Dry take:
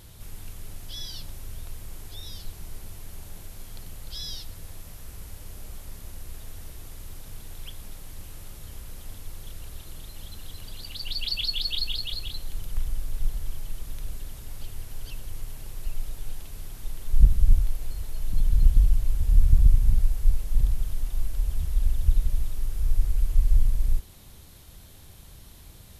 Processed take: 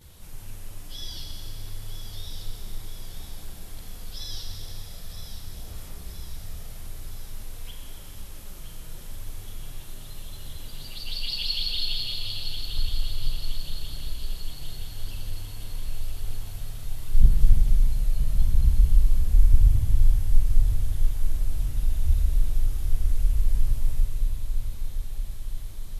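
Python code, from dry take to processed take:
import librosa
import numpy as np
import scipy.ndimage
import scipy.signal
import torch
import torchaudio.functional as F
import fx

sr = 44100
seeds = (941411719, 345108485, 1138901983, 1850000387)

y = fx.chorus_voices(x, sr, voices=2, hz=0.43, base_ms=13, depth_ms=4.6, mix_pct=70)
y = fx.echo_feedback(y, sr, ms=969, feedback_pct=57, wet_db=-9)
y = fx.rev_schroeder(y, sr, rt60_s=3.0, comb_ms=30, drr_db=1.0)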